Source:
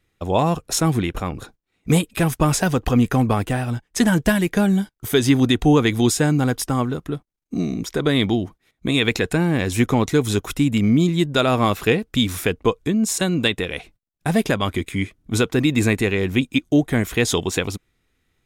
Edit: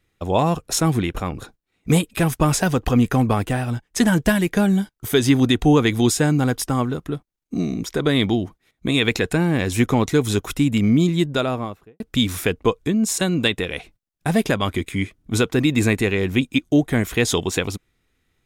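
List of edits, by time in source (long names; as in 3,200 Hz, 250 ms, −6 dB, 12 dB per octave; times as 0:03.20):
0:11.12–0:12.00: fade out and dull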